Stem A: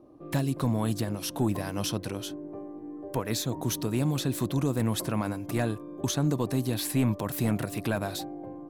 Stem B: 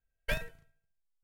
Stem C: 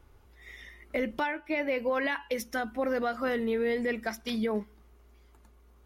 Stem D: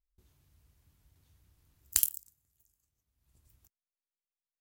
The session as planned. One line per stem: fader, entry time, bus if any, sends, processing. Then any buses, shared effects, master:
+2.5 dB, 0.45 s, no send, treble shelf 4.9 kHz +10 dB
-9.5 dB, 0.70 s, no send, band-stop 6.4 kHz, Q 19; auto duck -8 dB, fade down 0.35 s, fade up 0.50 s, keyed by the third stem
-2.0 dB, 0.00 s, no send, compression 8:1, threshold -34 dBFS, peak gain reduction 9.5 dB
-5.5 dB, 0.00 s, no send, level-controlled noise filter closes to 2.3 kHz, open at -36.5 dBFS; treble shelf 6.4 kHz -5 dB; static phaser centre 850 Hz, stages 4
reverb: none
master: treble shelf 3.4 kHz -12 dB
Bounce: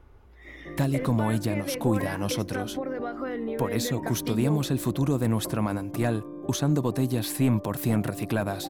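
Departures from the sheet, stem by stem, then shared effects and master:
stem C -2.0 dB -> +5.0 dB; stem D -5.5 dB -> -13.5 dB

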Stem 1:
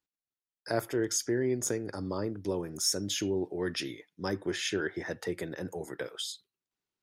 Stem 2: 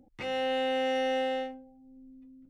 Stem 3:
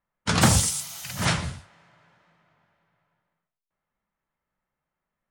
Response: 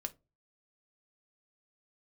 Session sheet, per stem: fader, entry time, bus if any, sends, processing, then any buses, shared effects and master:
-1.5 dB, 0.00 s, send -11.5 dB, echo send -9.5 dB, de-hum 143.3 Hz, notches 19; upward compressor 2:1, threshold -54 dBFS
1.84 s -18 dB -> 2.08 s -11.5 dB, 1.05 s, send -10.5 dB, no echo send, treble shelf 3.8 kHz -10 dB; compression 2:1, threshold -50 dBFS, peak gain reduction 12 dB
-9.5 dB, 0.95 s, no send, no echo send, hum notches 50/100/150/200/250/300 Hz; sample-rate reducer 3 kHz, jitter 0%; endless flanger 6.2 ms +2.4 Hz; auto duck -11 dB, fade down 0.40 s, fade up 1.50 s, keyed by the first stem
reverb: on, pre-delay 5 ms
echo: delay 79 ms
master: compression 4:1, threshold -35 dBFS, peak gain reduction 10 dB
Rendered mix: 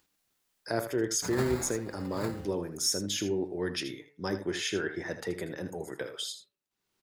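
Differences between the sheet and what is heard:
stem 3 -9.5 dB -> -2.0 dB; master: missing compression 4:1, threshold -35 dBFS, peak gain reduction 10 dB

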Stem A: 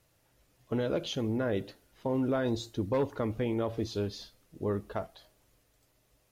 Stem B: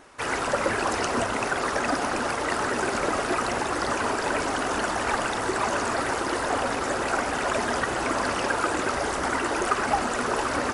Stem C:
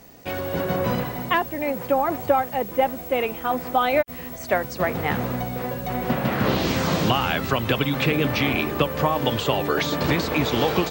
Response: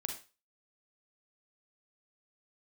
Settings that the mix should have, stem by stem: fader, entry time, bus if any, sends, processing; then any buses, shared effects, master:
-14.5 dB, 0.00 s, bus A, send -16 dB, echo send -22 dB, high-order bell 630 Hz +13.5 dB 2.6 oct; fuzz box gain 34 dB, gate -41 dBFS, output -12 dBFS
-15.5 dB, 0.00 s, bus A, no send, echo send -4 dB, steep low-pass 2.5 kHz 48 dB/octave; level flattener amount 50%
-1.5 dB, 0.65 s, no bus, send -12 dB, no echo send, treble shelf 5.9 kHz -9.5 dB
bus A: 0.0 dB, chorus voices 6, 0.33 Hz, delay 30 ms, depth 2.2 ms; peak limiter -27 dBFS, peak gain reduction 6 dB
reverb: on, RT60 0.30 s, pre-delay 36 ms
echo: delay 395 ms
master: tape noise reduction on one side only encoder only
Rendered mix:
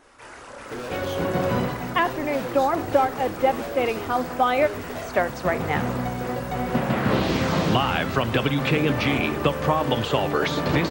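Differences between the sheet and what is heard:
stem B: missing steep low-pass 2.5 kHz 48 dB/octave; master: missing tape noise reduction on one side only encoder only

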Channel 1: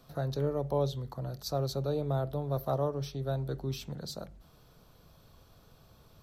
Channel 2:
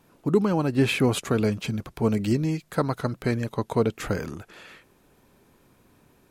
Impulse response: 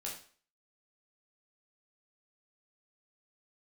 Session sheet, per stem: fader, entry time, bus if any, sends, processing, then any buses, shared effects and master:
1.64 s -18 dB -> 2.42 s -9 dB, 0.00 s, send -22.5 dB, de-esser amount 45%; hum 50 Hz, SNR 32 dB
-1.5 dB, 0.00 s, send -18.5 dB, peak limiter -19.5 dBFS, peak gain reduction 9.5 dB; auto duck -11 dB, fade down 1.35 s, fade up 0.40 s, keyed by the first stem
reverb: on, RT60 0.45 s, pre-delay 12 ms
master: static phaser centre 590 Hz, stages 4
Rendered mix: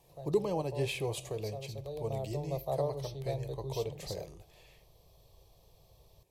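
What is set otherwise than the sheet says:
stem 1 -18.0 dB -> -11.0 dB; stem 2: missing peak limiter -19.5 dBFS, peak gain reduction 9.5 dB

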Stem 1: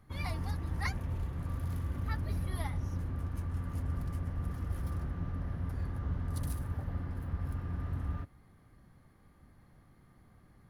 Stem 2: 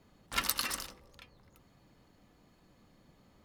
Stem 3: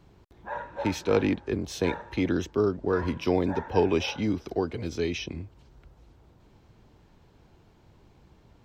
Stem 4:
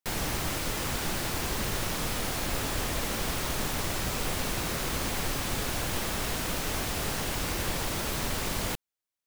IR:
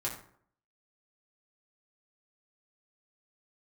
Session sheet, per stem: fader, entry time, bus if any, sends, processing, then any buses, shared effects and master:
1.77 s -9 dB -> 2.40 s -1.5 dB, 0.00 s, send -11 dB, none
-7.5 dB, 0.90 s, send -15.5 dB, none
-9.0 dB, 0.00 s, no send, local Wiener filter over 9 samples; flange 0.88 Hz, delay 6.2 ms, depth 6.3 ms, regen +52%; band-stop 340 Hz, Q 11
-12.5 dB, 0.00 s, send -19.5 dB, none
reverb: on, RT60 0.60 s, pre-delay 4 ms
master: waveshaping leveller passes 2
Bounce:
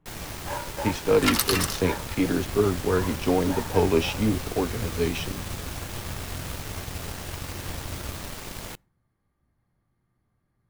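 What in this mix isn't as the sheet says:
stem 1 -9.0 dB -> -18.5 dB; stem 2 -7.5 dB -> +0.5 dB; stem 3 -9.0 dB -> -1.0 dB

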